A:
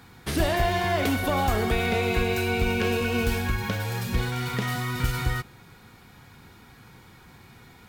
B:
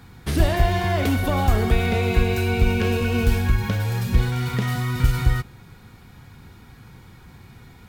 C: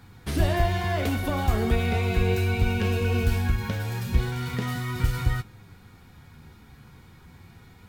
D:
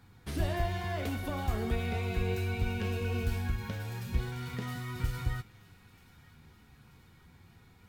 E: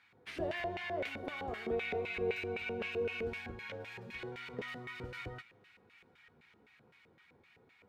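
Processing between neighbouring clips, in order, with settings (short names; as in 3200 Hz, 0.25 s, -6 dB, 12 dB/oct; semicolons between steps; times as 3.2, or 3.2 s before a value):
low shelf 180 Hz +10 dB
flange 0.37 Hz, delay 9.3 ms, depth 5 ms, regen +53%
thin delay 0.932 s, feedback 60%, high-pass 1600 Hz, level -20 dB; gain -8.5 dB
LFO band-pass square 3.9 Hz 480–2300 Hz; gain +6 dB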